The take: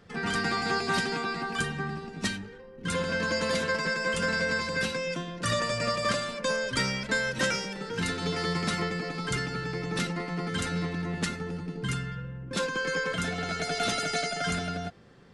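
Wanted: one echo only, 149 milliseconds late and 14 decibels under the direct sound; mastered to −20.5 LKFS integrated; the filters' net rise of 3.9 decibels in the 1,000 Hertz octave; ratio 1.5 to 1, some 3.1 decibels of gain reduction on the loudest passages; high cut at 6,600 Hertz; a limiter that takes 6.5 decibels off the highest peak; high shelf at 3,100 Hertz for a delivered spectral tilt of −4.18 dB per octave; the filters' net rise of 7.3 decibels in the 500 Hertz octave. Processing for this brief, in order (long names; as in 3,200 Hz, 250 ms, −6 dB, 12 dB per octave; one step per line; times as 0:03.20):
low-pass filter 6,600 Hz
parametric band 500 Hz +7.5 dB
parametric band 1,000 Hz +4 dB
high-shelf EQ 3,100 Hz −7 dB
downward compressor 1.5 to 1, threshold −28 dBFS
brickwall limiter −21 dBFS
single-tap delay 149 ms −14 dB
level +10 dB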